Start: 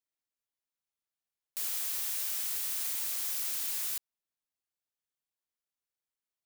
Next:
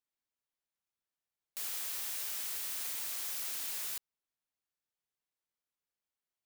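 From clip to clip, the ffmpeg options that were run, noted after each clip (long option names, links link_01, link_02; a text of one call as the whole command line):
ffmpeg -i in.wav -af "highshelf=frequency=4300:gain=-5" out.wav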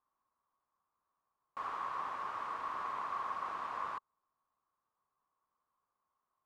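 ffmpeg -i in.wav -af "lowpass=frequency=1100:width_type=q:width=10,volume=6dB" out.wav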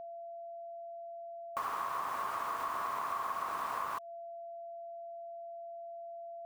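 ffmpeg -i in.wav -af "acrusher=bits=8:mix=0:aa=0.000001,aeval=exprs='val(0)+0.00251*sin(2*PI*680*n/s)':channel_layout=same,acompressor=threshold=-43dB:ratio=6,volume=9.5dB" out.wav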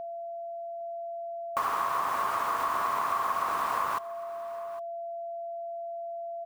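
ffmpeg -i in.wav -af "aecho=1:1:809:0.133,volume=7.5dB" out.wav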